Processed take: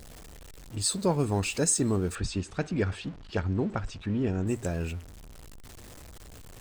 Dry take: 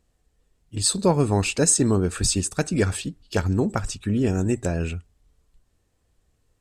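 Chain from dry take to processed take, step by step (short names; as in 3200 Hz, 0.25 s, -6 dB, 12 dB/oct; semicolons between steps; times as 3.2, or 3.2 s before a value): zero-crossing step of -34 dBFS; 2.15–4.47 LPF 3600 Hz 12 dB/oct; gain -7 dB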